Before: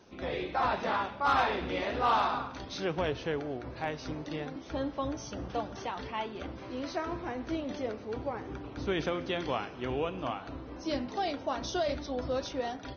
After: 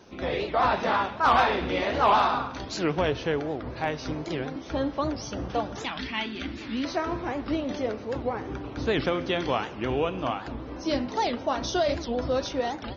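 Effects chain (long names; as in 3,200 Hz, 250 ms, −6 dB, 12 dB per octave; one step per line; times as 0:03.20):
0:05.85–0:06.85: octave-band graphic EQ 125/250/500/1,000/2,000/4,000 Hz −7/+8/−11/−6/+6/+6 dB
wow of a warped record 78 rpm, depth 250 cents
level +6 dB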